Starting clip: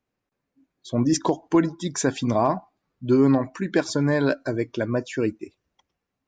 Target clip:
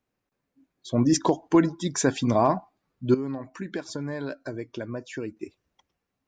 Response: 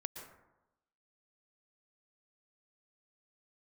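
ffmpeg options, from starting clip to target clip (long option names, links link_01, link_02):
-filter_complex "[0:a]asettb=1/sr,asplit=3[link_01][link_02][link_03];[link_01]atrim=end=3.144[link_04];[link_02]atrim=start=3.14:end=5.37,asetpts=PTS-STARTPTS,afade=type=in:duration=0.004:curve=qsin,afade=type=out:start_time=2.226:duration=0.004:curve=qsin,acompressor=threshold=-33dB:ratio=3[link_05];[link_03]atrim=start=5.366[link_06];[link_04][link_05]acrossfade=duration=0.004:curve1=hsin:curve2=qsin[link_07];[link_07][link_06]acrossfade=duration=0.004:curve1=qsin:curve2=hsin"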